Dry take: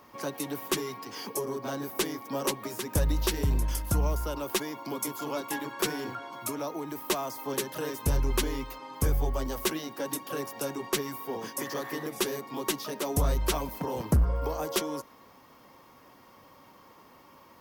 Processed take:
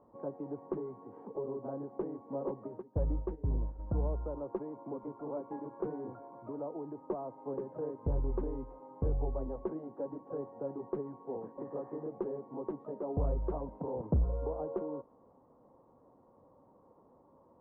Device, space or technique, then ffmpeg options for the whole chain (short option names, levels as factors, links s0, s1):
under water: -filter_complex "[0:a]asplit=3[s0][s1][s2];[s0]afade=t=out:st=2.81:d=0.02[s3];[s1]agate=range=0.178:threshold=0.0447:ratio=16:detection=peak,afade=t=in:st=2.81:d=0.02,afade=t=out:st=3.78:d=0.02[s4];[s2]afade=t=in:st=3.78:d=0.02[s5];[s3][s4][s5]amix=inputs=3:normalize=0,lowpass=f=870:w=0.5412,lowpass=f=870:w=1.3066,equalizer=f=490:t=o:w=0.38:g=4.5,volume=0.501"